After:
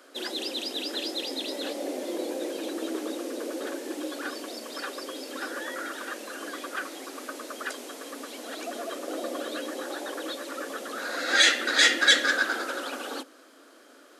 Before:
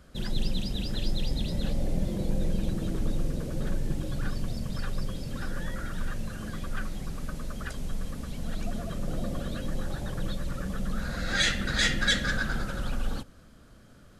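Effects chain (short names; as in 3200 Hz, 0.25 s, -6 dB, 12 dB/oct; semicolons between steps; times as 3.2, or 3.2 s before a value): steep high-pass 270 Hz 72 dB/oct; gain +6.5 dB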